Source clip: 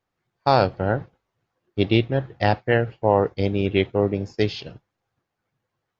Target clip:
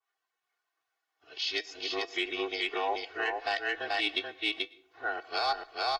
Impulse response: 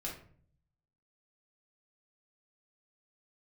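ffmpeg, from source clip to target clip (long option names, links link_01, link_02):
-filter_complex "[0:a]areverse,highpass=1000,asoftclip=type=tanh:threshold=-10.5dB,afreqshift=-28,aecho=1:1:2.7:0.92,aecho=1:1:434:0.668,alimiter=limit=-16.5dB:level=0:latency=1:release=103,asplit=2[link_01][link_02];[1:a]atrim=start_sample=2205,adelay=107[link_03];[link_02][link_03]afir=irnorm=-1:irlink=0,volume=-21.5dB[link_04];[link_01][link_04]amix=inputs=2:normalize=0,flanger=delay=4.9:depth=1.8:regen=81:speed=0.36:shape=triangular,adynamicequalizer=threshold=0.00447:dfrequency=2300:dqfactor=0.7:tfrequency=2300:tqfactor=0.7:attack=5:release=100:ratio=0.375:range=2.5:mode=boostabove:tftype=highshelf"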